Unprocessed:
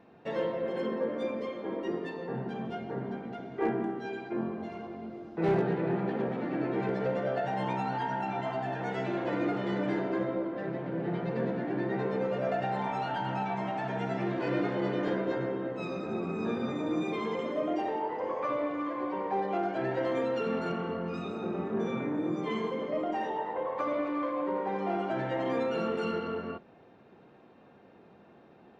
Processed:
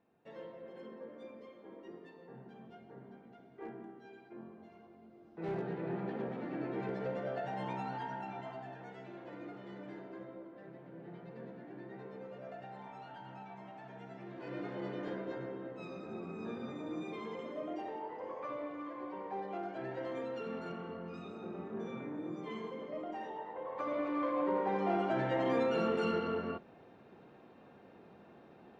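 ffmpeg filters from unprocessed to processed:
ffmpeg -i in.wav -af "volume=8.5dB,afade=type=in:start_time=5.1:duration=0.93:silence=0.334965,afade=type=out:start_time=7.86:duration=1.12:silence=0.334965,afade=type=in:start_time=14.26:duration=0.53:silence=0.446684,afade=type=in:start_time=23.6:duration=0.81:silence=0.354813" out.wav

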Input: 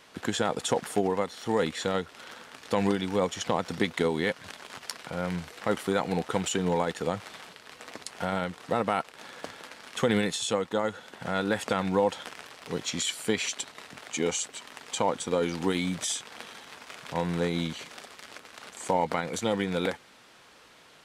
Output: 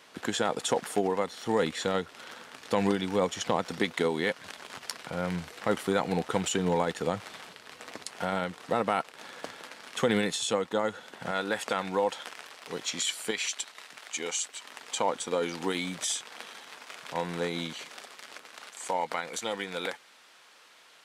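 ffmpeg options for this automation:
ffmpeg -i in.wav -af "asetnsamples=nb_out_samples=441:pad=0,asendcmd='1.24 highpass f 99;3.62 highpass f 210;4.58 highpass f 61;8.05 highpass f 150;11.31 highpass f 480;13.31 highpass f 1100;14.64 highpass f 390;18.64 highpass f 870',highpass=frequency=200:poles=1" out.wav

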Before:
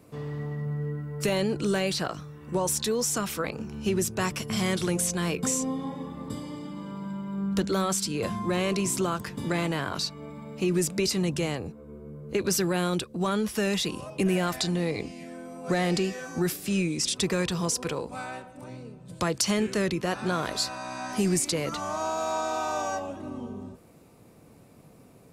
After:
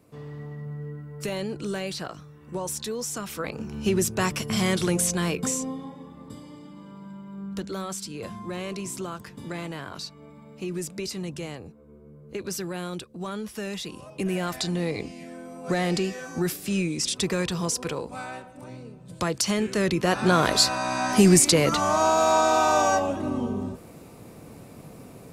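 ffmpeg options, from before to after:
ffmpeg -i in.wav -af "volume=18.5dB,afade=type=in:start_time=3.25:duration=0.53:silence=0.421697,afade=type=out:start_time=5.14:duration=0.8:silence=0.334965,afade=type=in:start_time=13.87:duration=0.98:silence=0.446684,afade=type=in:start_time=19.7:duration=0.76:silence=0.375837" out.wav

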